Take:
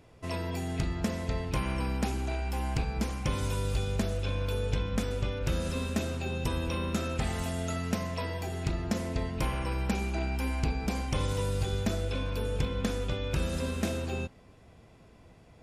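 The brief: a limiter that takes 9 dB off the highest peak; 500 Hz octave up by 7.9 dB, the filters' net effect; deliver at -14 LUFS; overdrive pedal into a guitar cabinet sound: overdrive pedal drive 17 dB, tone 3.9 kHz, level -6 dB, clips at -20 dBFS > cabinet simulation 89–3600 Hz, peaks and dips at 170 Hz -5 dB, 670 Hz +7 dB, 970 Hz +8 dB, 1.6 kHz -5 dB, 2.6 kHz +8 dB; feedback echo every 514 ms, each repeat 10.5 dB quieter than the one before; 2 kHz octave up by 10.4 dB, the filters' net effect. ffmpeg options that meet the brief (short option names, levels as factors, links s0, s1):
-filter_complex "[0:a]equalizer=f=500:t=o:g=5.5,equalizer=f=2000:t=o:g=9,alimiter=limit=0.075:level=0:latency=1,aecho=1:1:514|1028|1542:0.299|0.0896|0.0269,asplit=2[s0][s1];[s1]highpass=f=720:p=1,volume=7.08,asoftclip=type=tanh:threshold=0.1[s2];[s0][s2]amix=inputs=2:normalize=0,lowpass=f=3900:p=1,volume=0.501,highpass=89,equalizer=f=170:t=q:w=4:g=-5,equalizer=f=670:t=q:w=4:g=7,equalizer=f=970:t=q:w=4:g=8,equalizer=f=1600:t=q:w=4:g=-5,equalizer=f=2600:t=q:w=4:g=8,lowpass=f=3600:w=0.5412,lowpass=f=3600:w=1.3066,volume=3.55"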